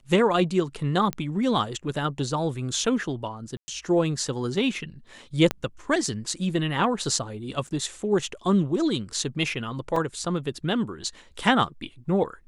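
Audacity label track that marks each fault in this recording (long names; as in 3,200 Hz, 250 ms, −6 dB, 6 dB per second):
1.130000	1.130000	click −14 dBFS
3.570000	3.680000	drop-out 110 ms
5.510000	5.510000	click −10 dBFS
7.670000	7.680000	drop-out 5.4 ms
9.960000	9.960000	drop-out 3.4 ms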